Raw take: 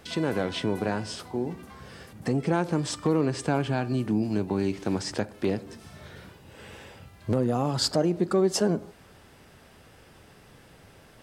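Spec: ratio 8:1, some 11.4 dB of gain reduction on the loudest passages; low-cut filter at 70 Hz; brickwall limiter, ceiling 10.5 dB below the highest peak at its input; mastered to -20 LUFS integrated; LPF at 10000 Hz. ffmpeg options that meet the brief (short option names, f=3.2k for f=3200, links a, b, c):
-af "highpass=70,lowpass=10k,acompressor=threshold=-31dB:ratio=8,volume=20.5dB,alimiter=limit=-9.5dB:level=0:latency=1"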